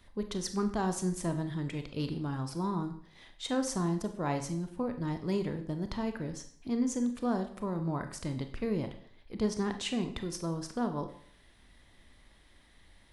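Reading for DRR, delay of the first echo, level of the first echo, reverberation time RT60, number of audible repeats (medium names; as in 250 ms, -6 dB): 7.0 dB, no echo, no echo, 0.55 s, no echo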